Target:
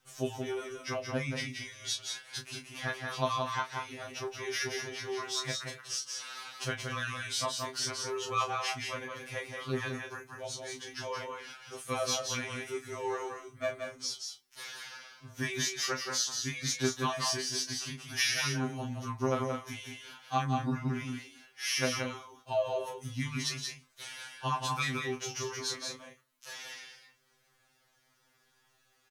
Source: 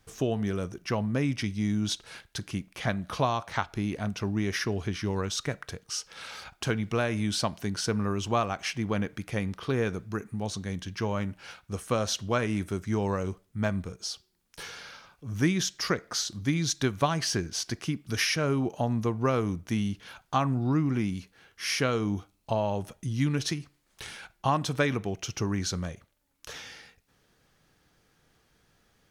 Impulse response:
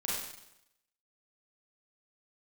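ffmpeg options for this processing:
-filter_complex "[0:a]lowshelf=f=450:g=-11,asplit=2[s0][s1];[s1]adelay=28,volume=0.422[s2];[s0][s2]amix=inputs=2:normalize=0,asplit=2[s3][s4];[s4]aecho=0:1:176|208:0.562|0.251[s5];[s3][s5]amix=inputs=2:normalize=0,afftfilt=real='re*2.45*eq(mod(b,6),0)':imag='im*2.45*eq(mod(b,6),0)':win_size=2048:overlap=0.75"

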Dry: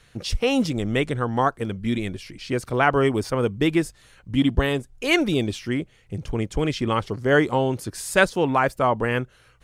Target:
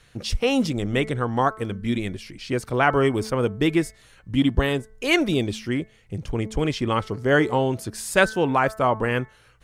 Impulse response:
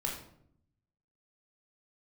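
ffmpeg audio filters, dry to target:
-af "bandreject=f=218.5:t=h:w=4,bandreject=f=437:t=h:w=4,bandreject=f=655.5:t=h:w=4,bandreject=f=874:t=h:w=4,bandreject=f=1092.5:t=h:w=4,bandreject=f=1311:t=h:w=4,bandreject=f=1529.5:t=h:w=4,bandreject=f=1748:t=h:w=4,bandreject=f=1966.5:t=h:w=4,bandreject=f=2185:t=h:w=4"

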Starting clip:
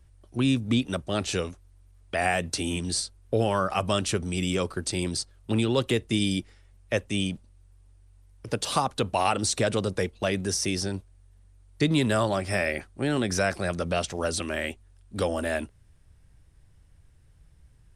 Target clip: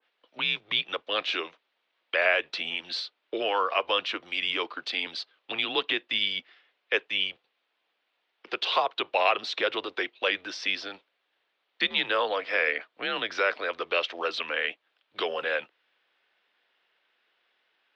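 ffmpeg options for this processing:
-af "highpass=f=530:t=q:w=0.5412,highpass=f=530:t=q:w=1.307,lowpass=f=3600:t=q:w=0.5176,lowpass=f=3600:t=q:w=0.7071,lowpass=f=3600:t=q:w=1.932,afreqshift=-97,crystalizer=i=7:c=0,adynamicequalizer=threshold=0.0224:dfrequency=1600:dqfactor=0.7:tfrequency=1600:tqfactor=0.7:attack=5:release=100:ratio=0.375:range=2.5:mode=cutabove:tftype=highshelf,volume=0.841"

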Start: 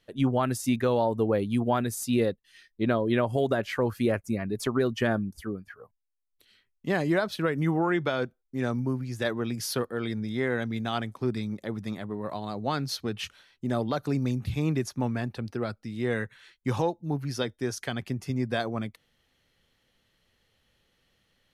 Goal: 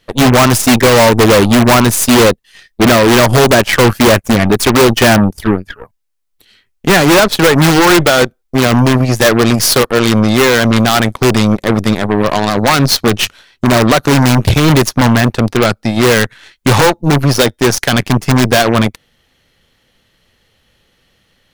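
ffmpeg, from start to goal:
-af "aeval=exprs='0.0891*(abs(mod(val(0)/0.0891+3,4)-2)-1)':c=same,aeval=exprs='0.0891*(cos(1*acos(clip(val(0)/0.0891,-1,1)))-cos(1*PI/2))+0.00112*(cos(4*acos(clip(val(0)/0.0891,-1,1)))-cos(4*PI/2))+0.0224*(cos(6*acos(clip(val(0)/0.0891,-1,1)))-cos(6*PI/2))+0.00891*(cos(7*acos(clip(val(0)/0.0891,-1,1)))-cos(7*PI/2))+0.02*(cos(8*acos(clip(val(0)/0.0891,-1,1)))-cos(8*PI/2))':c=same,apsyclip=20,volume=0.794"

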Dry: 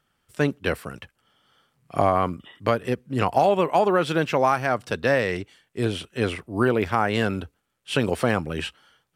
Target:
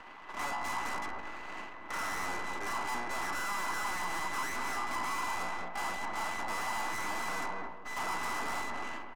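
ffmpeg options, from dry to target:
-filter_complex "[0:a]bandreject=f=60:t=h:w=6,bandreject=f=120:t=h:w=6,bandreject=f=180:t=h:w=6,bandreject=f=240:t=h:w=6,bandreject=f=300:t=h:w=6,bandreject=f=360:t=h:w=6,bandreject=f=420:t=h:w=6,bandreject=f=480:t=h:w=6,bandreject=f=540:t=h:w=6,bandreject=f=600:t=h:w=6,acompressor=threshold=0.0141:ratio=2.5,aresample=11025,acrusher=bits=4:mode=log:mix=0:aa=0.000001,aresample=44100,asplit=2[s0][s1];[s1]highpass=f=720:p=1,volume=56.2,asoftclip=type=tanh:threshold=0.141[s2];[s0][s2]amix=inputs=2:normalize=0,lowpass=f=1400:p=1,volume=0.501,aeval=exprs='val(0)*sin(2*PI*1000*n/s)':c=same,aeval=exprs='abs(val(0))':c=same,acrossover=split=260 3300:gain=0.178 1 0.0891[s3][s4][s5];[s3][s4][s5]amix=inputs=3:normalize=0,asplit=2[s6][s7];[s7]adelay=217,lowpass=f=860:p=1,volume=0.501,asplit=2[s8][s9];[s9]adelay=217,lowpass=f=860:p=1,volume=0.27,asplit=2[s10][s11];[s11]adelay=217,lowpass=f=860:p=1,volume=0.27[s12];[s8][s10][s12]amix=inputs=3:normalize=0[s13];[s6][s13]amix=inputs=2:normalize=0,acontrast=46,asoftclip=type=tanh:threshold=0.0178,equalizer=f=125:t=o:w=1:g=-7,equalizer=f=500:t=o:w=1:g=-10,equalizer=f=1000:t=o:w=1:g=7,equalizer=f=2000:t=o:w=1:g=-7,equalizer=f=4000:t=o:w=1:g=-9,volume=1.88"

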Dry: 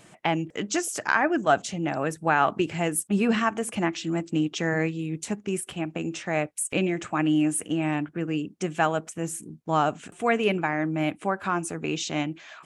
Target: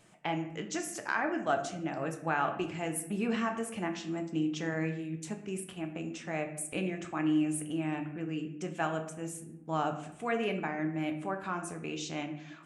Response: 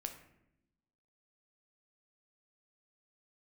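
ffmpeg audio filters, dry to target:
-filter_complex "[1:a]atrim=start_sample=2205[s0];[0:a][s0]afir=irnorm=-1:irlink=0,volume=0.473"

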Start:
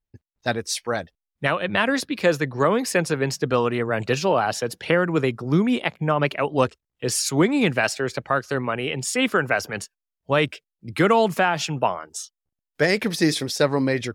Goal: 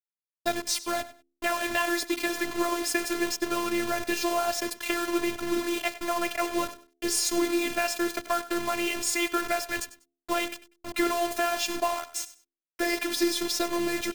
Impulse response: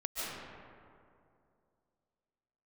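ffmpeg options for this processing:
-filter_complex "[0:a]acontrast=89,flanger=delay=6.5:depth=8.9:regen=82:speed=0.22:shape=sinusoidal,acompressor=threshold=0.112:ratio=6,acrusher=bits=4:mix=0:aa=0.000001,bandreject=f=76.23:t=h:w=4,bandreject=f=152.46:t=h:w=4,bandreject=f=228.69:t=h:w=4,bandreject=f=304.92:t=h:w=4,bandreject=f=381.15:t=h:w=4,bandreject=f=457.38:t=h:w=4,bandreject=f=533.61:t=h:w=4,afftfilt=real='hypot(re,im)*cos(PI*b)':imag='0':win_size=512:overlap=0.75,asplit=2[s0][s1];[s1]aecho=0:1:97|194:0.158|0.0349[s2];[s0][s2]amix=inputs=2:normalize=0"

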